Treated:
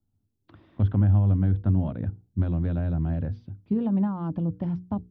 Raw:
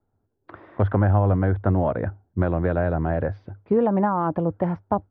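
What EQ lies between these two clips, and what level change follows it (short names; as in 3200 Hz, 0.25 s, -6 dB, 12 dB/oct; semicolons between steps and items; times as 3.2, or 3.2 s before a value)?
band shelf 900 Hz -15.5 dB 2.9 oct; notches 60/120/180/240/300/360/420/480 Hz; 0.0 dB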